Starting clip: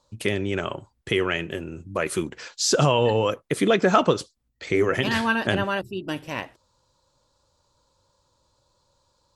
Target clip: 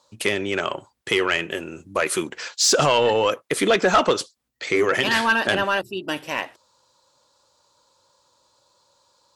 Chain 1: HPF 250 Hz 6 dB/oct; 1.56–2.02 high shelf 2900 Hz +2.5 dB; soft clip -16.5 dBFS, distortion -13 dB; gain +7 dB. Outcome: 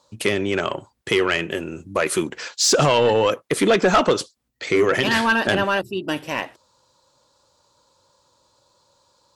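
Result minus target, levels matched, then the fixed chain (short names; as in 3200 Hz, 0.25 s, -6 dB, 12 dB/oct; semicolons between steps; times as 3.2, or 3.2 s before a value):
250 Hz band +3.0 dB
HPF 560 Hz 6 dB/oct; 1.56–2.02 high shelf 2900 Hz +2.5 dB; soft clip -16.5 dBFS, distortion -14 dB; gain +7 dB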